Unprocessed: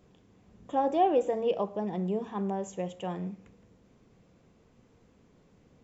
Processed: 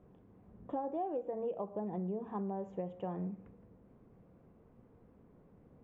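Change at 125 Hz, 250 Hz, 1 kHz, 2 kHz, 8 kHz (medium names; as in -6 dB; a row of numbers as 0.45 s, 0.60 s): -5.0 dB, -6.5 dB, -11.5 dB, -15.0 dB, no reading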